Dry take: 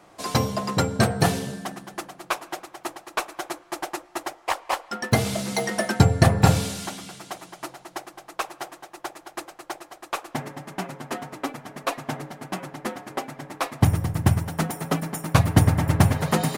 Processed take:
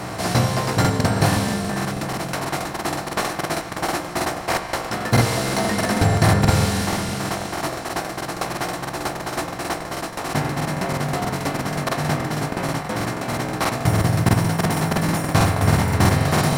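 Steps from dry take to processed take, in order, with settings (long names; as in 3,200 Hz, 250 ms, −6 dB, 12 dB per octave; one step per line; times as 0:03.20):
compressor on every frequency bin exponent 0.4
chorus effect 0.22 Hz, delay 16.5 ms, depth 4.4 ms
regular buffer underruns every 0.16 s, samples 2,048, repeat, from 0:00.80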